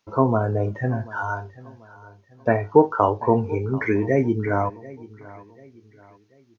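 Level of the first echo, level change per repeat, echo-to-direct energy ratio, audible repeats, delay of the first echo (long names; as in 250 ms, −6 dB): −20.0 dB, −8.0 dB, −19.5 dB, 2, 738 ms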